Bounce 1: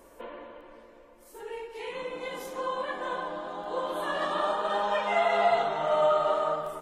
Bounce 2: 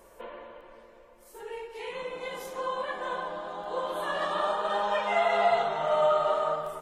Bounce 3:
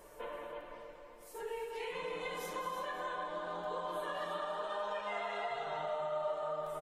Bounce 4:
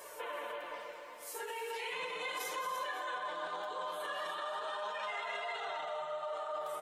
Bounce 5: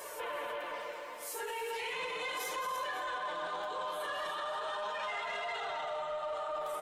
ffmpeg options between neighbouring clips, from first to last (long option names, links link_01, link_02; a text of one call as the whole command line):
ffmpeg -i in.wav -af "equalizer=frequency=280:width_type=o:width=0.24:gain=-14.5" out.wav
ffmpeg -i in.wav -filter_complex "[0:a]aecho=1:1:6.7:0.52,acompressor=threshold=-36dB:ratio=6,asplit=2[link_01][link_02];[link_02]aecho=0:1:210|326|536:0.316|0.355|0.112[link_03];[link_01][link_03]amix=inputs=2:normalize=0,volume=-1.5dB" out.wav
ffmpeg -i in.wav -af "alimiter=level_in=14.5dB:limit=-24dB:level=0:latency=1:release=35,volume=-14.5dB,flanger=delay=1.8:depth=8.5:regen=-38:speed=0.37:shape=sinusoidal,highpass=frequency=1200:poles=1,volume=15dB" out.wav
ffmpeg -i in.wav -filter_complex "[0:a]asplit=2[link_01][link_02];[link_02]alimiter=level_in=13.5dB:limit=-24dB:level=0:latency=1,volume=-13.5dB,volume=-1.5dB[link_03];[link_01][link_03]amix=inputs=2:normalize=0,asoftclip=type=tanh:threshold=-29.5dB" out.wav